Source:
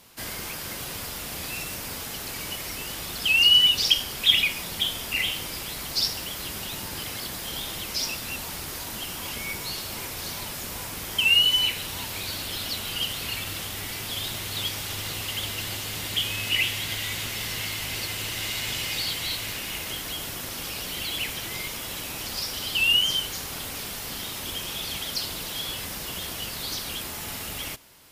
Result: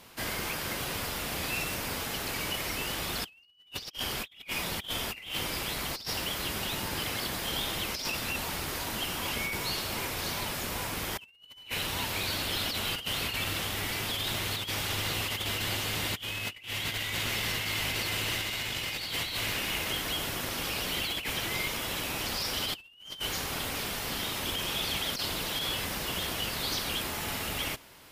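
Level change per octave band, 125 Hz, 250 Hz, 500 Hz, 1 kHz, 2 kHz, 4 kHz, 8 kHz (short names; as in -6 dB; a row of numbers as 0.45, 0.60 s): 0.0, +1.0, +2.0, +2.0, -4.0, -8.0, -4.0 dB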